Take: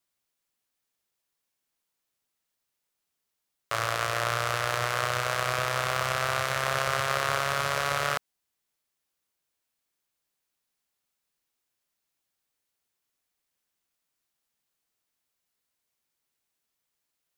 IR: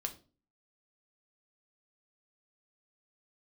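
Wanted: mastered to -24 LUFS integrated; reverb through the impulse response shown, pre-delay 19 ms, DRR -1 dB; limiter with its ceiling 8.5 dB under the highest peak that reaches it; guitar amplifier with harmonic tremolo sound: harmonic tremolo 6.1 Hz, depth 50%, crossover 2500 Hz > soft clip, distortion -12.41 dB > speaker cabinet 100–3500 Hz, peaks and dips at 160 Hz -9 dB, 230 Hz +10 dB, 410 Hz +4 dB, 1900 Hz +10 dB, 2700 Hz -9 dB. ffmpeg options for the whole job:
-filter_complex "[0:a]alimiter=limit=-17dB:level=0:latency=1,asplit=2[a][b];[1:a]atrim=start_sample=2205,adelay=19[c];[b][c]afir=irnorm=-1:irlink=0,volume=1dB[d];[a][d]amix=inputs=2:normalize=0,acrossover=split=2500[e][f];[e]aeval=exprs='val(0)*(1-0.5/2+0.5/2*cos(2*PI*6.1*n/s))':c=same[g];[f]aeval=exprs='val(0)*(1-0.5/2-0.5/2*cos(2*PI*6.1*n/s))':c=same[h];[g][h]amix=inputs=2:normalize=0,asoftclip=threshold=-27.5dB,highpass=100,equalizer=f=160:t=q:w=4:g=-9,equalizer=f=230:t=q:w=4:g=10,equalizer=f=410:t=q:w=4:g=4,equalizer=f=1.9k:t=q:w=4:g=10,equalizer=f=2.7k:t=q:w=4:g=-9,lowpass=f=3.5k:w=0.5412,lowpass=f=3.5k:w=1.3066,volume=9dB"

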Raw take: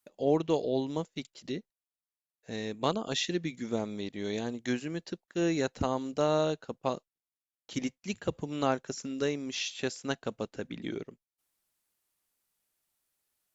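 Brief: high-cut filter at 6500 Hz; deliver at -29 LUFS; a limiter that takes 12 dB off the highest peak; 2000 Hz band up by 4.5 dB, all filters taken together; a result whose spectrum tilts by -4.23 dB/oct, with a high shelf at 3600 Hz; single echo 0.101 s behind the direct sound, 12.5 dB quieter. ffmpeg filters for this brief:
-af "lowpass=6.5k,equalizer=f=2k:t=o:g=8.5,highshelf=f=3.6k:g=-8.5,alimiter=limit=-23dB:level=0:latency=1,aecho=1:1:101:0.237,volume=7dB"

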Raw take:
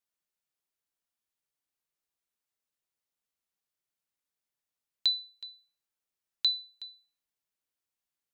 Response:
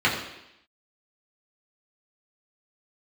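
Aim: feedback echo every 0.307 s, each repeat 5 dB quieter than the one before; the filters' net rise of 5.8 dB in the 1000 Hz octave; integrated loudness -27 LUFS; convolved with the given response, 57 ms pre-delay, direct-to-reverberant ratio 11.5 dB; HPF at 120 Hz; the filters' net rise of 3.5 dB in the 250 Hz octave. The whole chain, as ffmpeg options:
-filter_complex "[0:a]highpass=120,equalizer=f=250:t=o:g=4.5,equalizer=f=1k:t=o:g=7,aecho=1:1:307|614|921|1228|1535|1842|2149:0.562|0.315|0.176|0.0988|0.0553|0.031|0.0173,asplit=2[a][b];[1:a]atrim=start_sample=2205,adelay=57[c];[b][c]afir=irnorm=-1:irlink=0,volume=-29dB[d];[a][d]amix=inputs=2:normalize=0,volume=4.5dB"

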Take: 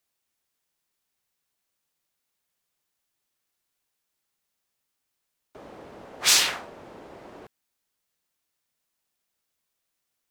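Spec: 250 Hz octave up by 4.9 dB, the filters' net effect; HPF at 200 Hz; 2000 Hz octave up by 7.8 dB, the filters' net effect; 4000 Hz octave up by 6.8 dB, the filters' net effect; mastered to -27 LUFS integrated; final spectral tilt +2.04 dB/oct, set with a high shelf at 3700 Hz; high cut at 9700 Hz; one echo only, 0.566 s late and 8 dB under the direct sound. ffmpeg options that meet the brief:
-af "highpass=200,lowpass=9.7k,equalizer=f=250:t=o:g=8,equalizer=f=2k:t=o:g=8,highshelf=f=3.7k:g=-3.5,equalizer=f=4k:t=o:g=8.5,aecho=1:1:566:0.398,volume=-9.5dB"

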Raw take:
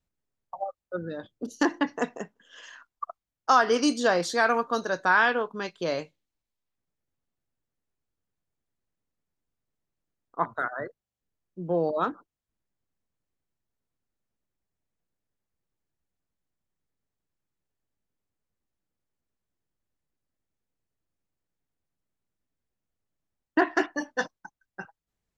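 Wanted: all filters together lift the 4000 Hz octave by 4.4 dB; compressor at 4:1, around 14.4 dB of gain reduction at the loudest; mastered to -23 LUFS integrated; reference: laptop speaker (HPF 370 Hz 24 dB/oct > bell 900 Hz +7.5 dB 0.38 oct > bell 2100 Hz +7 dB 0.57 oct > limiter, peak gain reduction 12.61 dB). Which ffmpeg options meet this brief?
-af "equalizer=f=4k:t=o:g=4.5,acompressor=threshold=-33dB:ratio=4,highpass=f=370:w=0.5412,highpass=f=370:w=1.3066,equalizer=f=900:t=o:w=0.38:g=7.5,equalizer=f=2.1k:t=o:w=0.57:g=7,volume=17.5dB,alimiter=limit=-10dB:level=0:latency=1"

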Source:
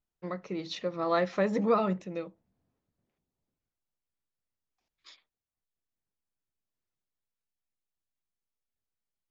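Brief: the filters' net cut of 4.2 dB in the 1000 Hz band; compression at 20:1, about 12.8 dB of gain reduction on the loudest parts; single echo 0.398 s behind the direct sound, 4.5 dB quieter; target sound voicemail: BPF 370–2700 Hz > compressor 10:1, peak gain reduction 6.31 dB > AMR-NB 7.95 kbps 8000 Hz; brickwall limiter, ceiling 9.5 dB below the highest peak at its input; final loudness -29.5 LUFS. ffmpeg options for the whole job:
-af "equalizer=f=1k:t=o:g=-5.5,acompressor=threshold=-34dB:ratio=20,alimiter=level_in=10.5dB:limit=-24dB:level=0:latency=1,volume=-10.5dB,highpass=370,lowpass=2.7k,aecho=1:1:398:0.596,acompressor=threshold=-45dB:ratio=10,volume=22dB" -ar 8000 -c:a libopencore_amrnb -b:a 7950

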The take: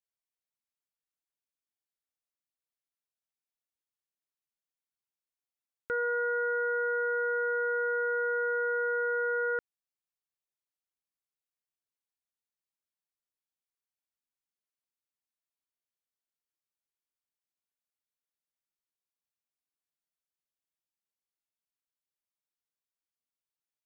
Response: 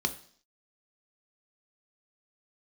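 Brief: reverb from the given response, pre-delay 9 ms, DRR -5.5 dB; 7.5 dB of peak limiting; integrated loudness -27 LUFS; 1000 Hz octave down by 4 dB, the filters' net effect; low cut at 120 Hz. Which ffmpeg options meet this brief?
-filter_complex "[0:a]highpass=120,equalizer=f=1k:t=o:g=-8,alimiter=level_in=10.5dB:limit=-24dB:level=0:latency=1,volume=-10.5dB,asplit=2[a][b];[1:a]atrim=start_sample=2205,adelay=9[c];[b][c]afir=irnorm=-1:irlink=0,volume=-1dB[d];[a][d]amix=inputs=2:normalize=0,volume=6.5dB"

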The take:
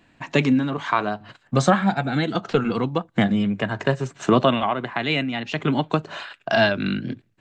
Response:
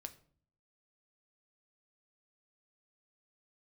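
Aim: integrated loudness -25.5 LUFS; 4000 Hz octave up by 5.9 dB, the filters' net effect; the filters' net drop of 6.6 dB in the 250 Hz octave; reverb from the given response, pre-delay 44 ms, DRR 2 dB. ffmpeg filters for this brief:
-filter_complex "[0:a]equalizer=f=250:t=o:g=-8.5,equalizer=f=4k:t=o:g=8,asplit=2[a][b];[1:a]atrim=start_sample=2205,adelay=44[c];[b][c]afir=irnorm=-1:irlink=0,volume=3dB[d];[a][d]amix=inputs=2:normalize=0,volume=-4.5dB"

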